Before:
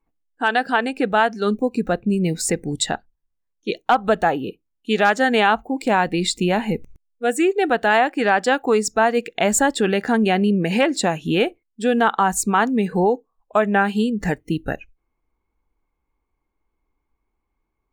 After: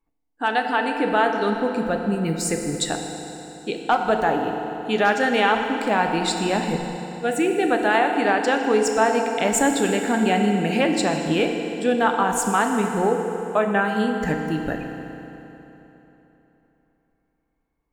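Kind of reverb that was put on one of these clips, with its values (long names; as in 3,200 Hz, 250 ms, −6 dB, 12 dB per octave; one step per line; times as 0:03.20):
feedback delay network reverb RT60 3.5 s, high-frequency decay 0.8×, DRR 3 dB
level −3.5 dB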